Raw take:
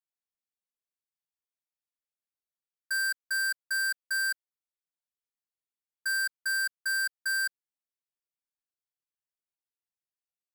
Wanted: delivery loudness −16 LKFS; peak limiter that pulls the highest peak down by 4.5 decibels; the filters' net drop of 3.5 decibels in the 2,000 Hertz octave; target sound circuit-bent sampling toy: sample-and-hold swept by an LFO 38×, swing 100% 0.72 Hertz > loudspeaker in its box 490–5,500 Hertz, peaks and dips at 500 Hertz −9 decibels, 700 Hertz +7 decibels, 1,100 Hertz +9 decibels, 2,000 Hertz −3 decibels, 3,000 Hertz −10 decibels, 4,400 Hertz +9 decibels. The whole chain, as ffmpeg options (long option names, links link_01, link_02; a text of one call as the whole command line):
ffmpeg -i in.wav -af "equalizer=frequency=2000:width_type=o:gain=-5.5,alimiter=level_in=8dB:limit=-24dB:level=0:latency=1,volume=-8dB,acrusher=samples=38:mix=1:aa=0.000001:lfo=1:lforange=38:lforate=0.72,highpass=490,equalizer=frequency=500:width_type=q:width=4:gain=-9,equalizer=frequency=700:width_type=q:width=4:gain=7,equalizer=frequency=1100:width_type=q:width=4:gain=9,equalizer=frequency=2000:width_type=q:width=4:gain=-3,equalizer=frequency=3000:width_type=q:width=4:gain=-10,equalizer=frequency=4400:width_type=q:width=4:gain=9,lowpass=frequency=5500:width=0.5412,lowpass=frequency=5500:width=1.3066,volume=25dB" out.wav